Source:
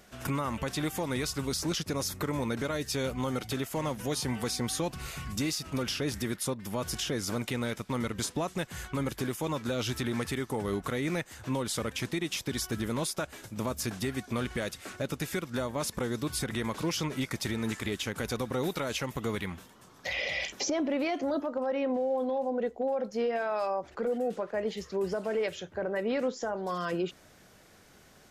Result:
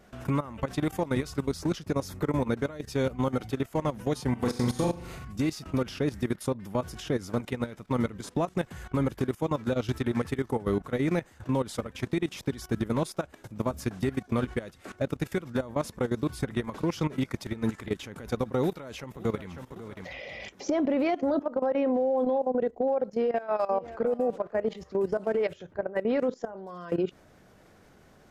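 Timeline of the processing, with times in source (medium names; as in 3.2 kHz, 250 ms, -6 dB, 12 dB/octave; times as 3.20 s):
4.31–5.25 s: flutter echo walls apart 7 m, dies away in 0.67 s
18.60–19.52 s: echo throw 550 ms, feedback 35%, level -11 dB
23.13–24.08 s: echo throw 550 ms, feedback 25%, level -16 dB
whole clip: treble shelf 2 kHz -11.5 dB; level held to a coarse grid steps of 16 dB; trim +7 dB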